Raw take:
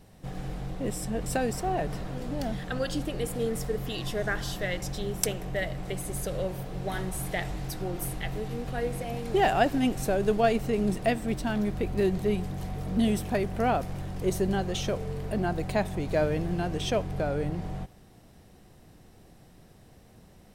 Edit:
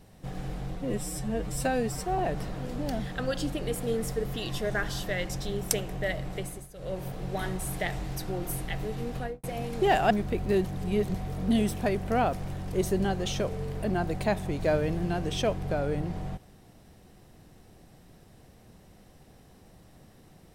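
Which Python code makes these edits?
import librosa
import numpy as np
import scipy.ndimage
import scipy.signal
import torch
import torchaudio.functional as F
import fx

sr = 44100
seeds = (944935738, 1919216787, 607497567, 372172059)

y = fx.studio_fade_out(x, sr, start_s=8.7, length_s=0.26)
y = fx.edit(y, sr, fx.stretch_span(start_s=0.76, length_s=0.95, factor=1.5),
    fx.fade_down_up(start_s=5.78, length_s=0.9, db=-17.5, fade_s=0.42, curve='qsin'),
    fx.cut(start_s=9.63, length_s=1.96),
    fx.reverse_span(start_s=12.13, length_s=0.5), tone=tone)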